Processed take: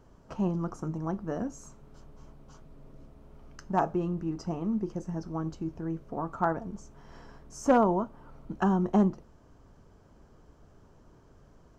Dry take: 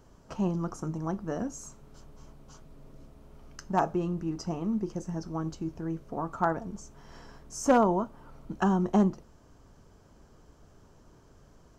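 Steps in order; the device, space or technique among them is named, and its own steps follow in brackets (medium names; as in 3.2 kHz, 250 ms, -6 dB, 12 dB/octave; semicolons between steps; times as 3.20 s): behind a face mask (treble shelf 3.4 kHz -8 dB)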